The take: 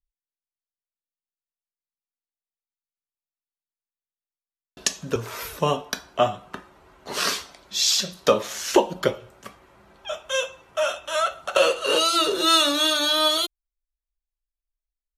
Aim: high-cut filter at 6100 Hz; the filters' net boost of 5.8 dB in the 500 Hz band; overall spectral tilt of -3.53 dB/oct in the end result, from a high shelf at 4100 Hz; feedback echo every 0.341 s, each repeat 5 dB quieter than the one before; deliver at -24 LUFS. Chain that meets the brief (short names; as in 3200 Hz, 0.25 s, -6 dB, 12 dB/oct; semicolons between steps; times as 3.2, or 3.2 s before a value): LPF 6100 Hz; bell 500 Hz +7 dB; high shelf 4100 Hz -6.5 dB; feedback echo 0.341 s, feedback 56%, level -5 dB; gain -4 dB